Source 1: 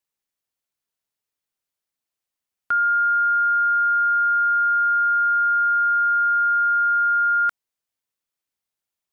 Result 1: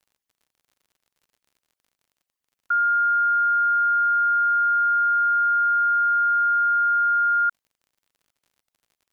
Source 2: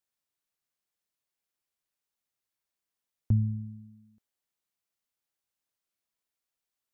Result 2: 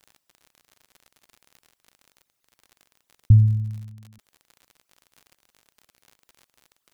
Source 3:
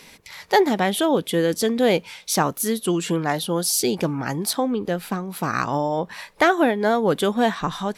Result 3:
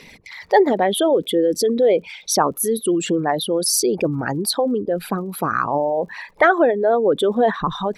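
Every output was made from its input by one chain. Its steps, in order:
resonances exaggerated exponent 2; crackle 59 per s -49 dBFS; normalise loudness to -19 LUFS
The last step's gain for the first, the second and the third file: -1.0 dB, +11.5 dB, +3.0 dB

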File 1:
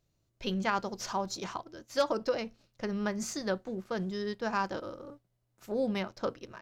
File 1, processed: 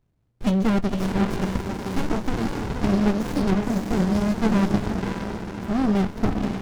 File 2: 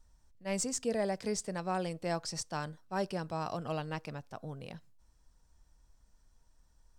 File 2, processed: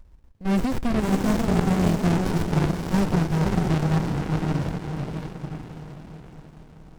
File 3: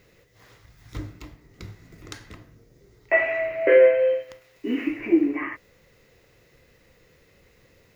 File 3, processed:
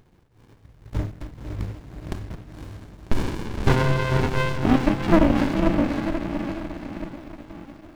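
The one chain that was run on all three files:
waveshaping leveller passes 1; echo that smears into a reverb 544 ms, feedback 51%, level -4 dB; sliding maximum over 65 samples; normalise loudness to -24 LUFS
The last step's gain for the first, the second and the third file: +9.5 dB, +13.0 dB, +4.5 dB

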